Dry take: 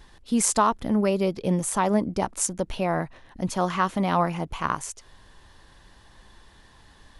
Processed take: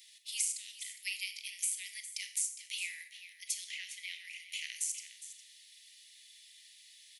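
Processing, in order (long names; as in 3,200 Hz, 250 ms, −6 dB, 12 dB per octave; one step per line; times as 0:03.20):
Butterworth high-pass 2,000 Hz 96 dB per octave
high-shelf EQ 7,300 Hz +10.5 dB
downward compressor 10 to 1, threshold −32 dBFS, peak gain reduction 18.5 dB
0:03.64–0:04.47: spectral tilt −3 dB per octave
single-tap delay 409 ms −13.5 dB
convolution reverb RT60 0.55 s, pre-delay 28 ms, DRR 8.5 dB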